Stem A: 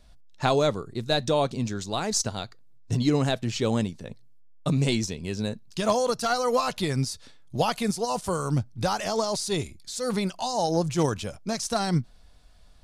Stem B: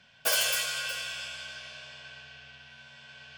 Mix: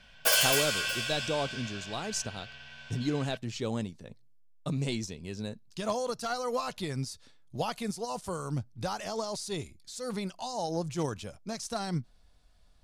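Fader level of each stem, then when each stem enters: -8.0 dB, +2.0 dB; 0.00 s, 0.00 s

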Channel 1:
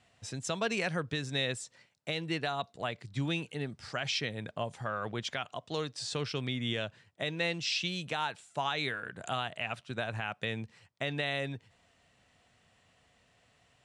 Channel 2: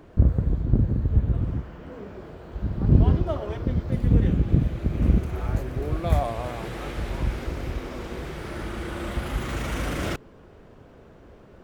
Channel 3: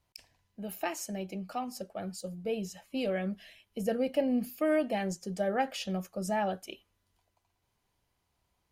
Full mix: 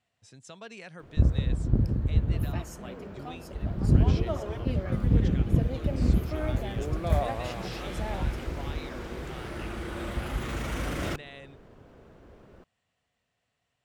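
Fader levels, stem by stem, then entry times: -12.5 dB, -3.5 dB, -8.0 dB; 0.00 s, 1.00 s, 1.70 s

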